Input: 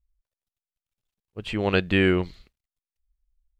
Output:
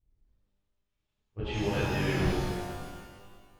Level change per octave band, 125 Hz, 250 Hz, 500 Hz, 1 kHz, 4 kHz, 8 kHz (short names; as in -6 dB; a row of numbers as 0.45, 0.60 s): -2.0 dB, -7.0 dB, -7.0 dB, -1.0 dB, -6.5 dB, n/a